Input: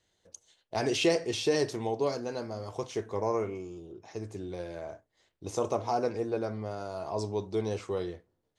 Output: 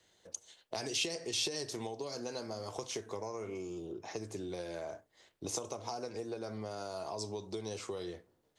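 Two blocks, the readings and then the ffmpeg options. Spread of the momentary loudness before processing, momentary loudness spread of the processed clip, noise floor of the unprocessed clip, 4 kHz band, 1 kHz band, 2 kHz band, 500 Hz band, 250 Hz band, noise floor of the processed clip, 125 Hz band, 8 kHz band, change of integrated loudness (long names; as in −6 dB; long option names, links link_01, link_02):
16 LU, 12 LU, −78 dBFS, −1.0 dB, −9.0 dB, −6.0 dB, −9.5 dB, −8.5 dB, −74 dBFS, −9.0 dB, +2.5 dB, −7.5 dB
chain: -filter_complex "[0:a]acrossover=split=150[link_01][link_02];[link_02]acompressor=threshold=-31dB:ratio=6[link_03];[link_01][link_03]amix=inputs=2:normalize=0,lowshelf=frequency=110:gain=-10,acrossover=split=3600[link_04][link_05];[link_04]acompressor=threshold=-44dB:ratio=6[link_06];[link_06][link_05]amix=inputs=2:normalize=0,volume=6dB"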